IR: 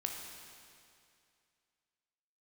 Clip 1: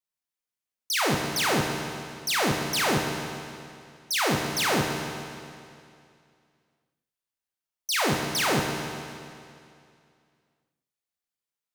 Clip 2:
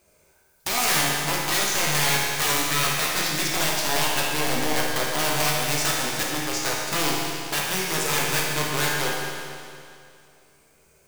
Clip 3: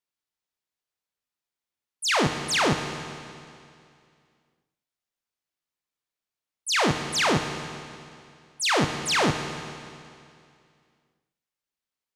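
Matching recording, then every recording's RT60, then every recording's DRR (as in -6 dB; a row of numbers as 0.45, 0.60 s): 1; 2.4, 2.4, 2.4 s; 1.0, -4.0, 5.5 dB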